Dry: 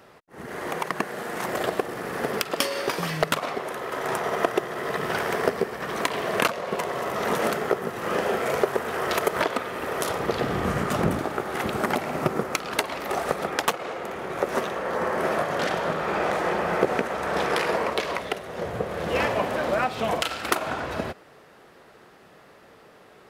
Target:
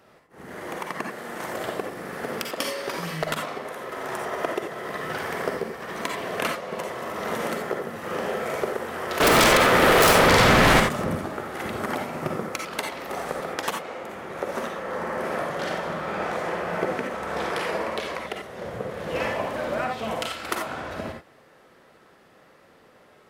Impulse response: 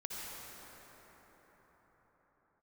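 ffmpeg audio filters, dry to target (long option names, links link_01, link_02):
-filter_complex "[0:a]asettb=1/sr,asplit=3[link_01][link_02][link_03];[link_01]atrim=end=9.204[link_04];[link_02]atrim=start=9.2:end=10.8,asetpts=PTS-STARTPTS,afade=type=in:duration=0.004:curve=qsin,afade=type=out:start_time=1.596:duration=0.004:curve=qsin,aeval=exprs='0.335*sin(PI/2*7.08*val(0)/0.335)':channel_layout=same[link_05];[link_03]atrim=start=10.796[link_06];[link_04][link_05]acrossfade=duration=0.004:curve1=hsin:curve2=qsin[link_07];[link_07][link_06]acrossfade=duration=0.004:curve1=qsin:curve2=hsin[link_08];[1:a]atrim=start_sample=2205,afade=type=out:start_time=0.18:duration=0.01,atrim=end_sample=8379,asetrate=61740,aresample=44100[link_09];[link_08][link_09]afir=irnorm=-1:irlink=0,volume=3dB"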